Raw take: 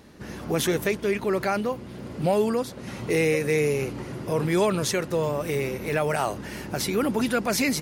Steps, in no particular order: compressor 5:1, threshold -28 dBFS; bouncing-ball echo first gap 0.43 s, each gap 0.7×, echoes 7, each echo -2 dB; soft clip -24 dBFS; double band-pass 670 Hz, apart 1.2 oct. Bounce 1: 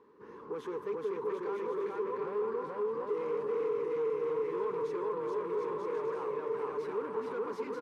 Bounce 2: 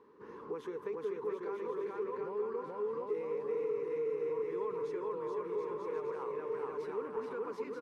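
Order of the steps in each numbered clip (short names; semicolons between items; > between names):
bouncing-ball echo > soft clip > double band-pass > compressor; bouncing-ball echo > compressor > double band-pass > soft clip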